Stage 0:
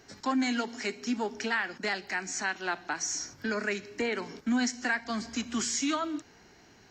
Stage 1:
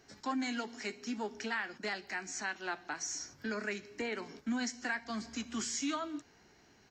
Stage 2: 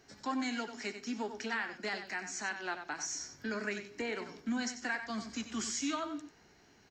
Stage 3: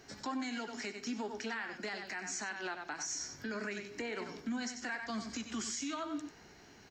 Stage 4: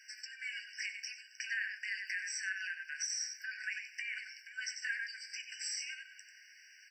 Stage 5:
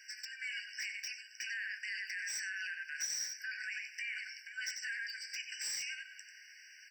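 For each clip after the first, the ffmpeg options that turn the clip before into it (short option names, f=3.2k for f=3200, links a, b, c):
-filter_complex "[0:a]asplit=2[a][b];[b]adelay=14,volume=-13dB[c];[a][c]amix=inputs=2:normalize=0,volume=-6.5dB"
-filter_complex "[0:a]asplit=2[a][b];[b]adelay=93.29,volume=-9dB,highshelf=f=4k:g=-2.1[c];[a][c]amix=inputs=2:normalize=0"
-af "alimiter=level_in=11.5dB:limit=-24dB:level=0:latency=1:release=257,volume=-11.5dB,volume=5.5dB"
-af "flanger=delay=8.6:depth=2.2:regen=-56:speed=1.4:shape=triangular,afftfilt=real='re*eq(mod(floor(b*sr/1024/1500),2),1)':imag='im*eq(mod(floor(b*sr/1024/1500),2),1)':win_size=1024:overlap=0.75,volume=8.5dB"
-filter_complex "[0:a]acrossover=split=3600|4700|5500[a][b][c][d];[a]alimiter=level_in=12.5dB:limit=-24dB:level=0:latency=1:release=16,volume=-12.5dB[e];[c]aeval=exprs='(mod(316*val(0)+1,2)-1)/316':c=same[f];[e][b][f][d]amix=inputs=4:normalize=0,volume=2.5dB"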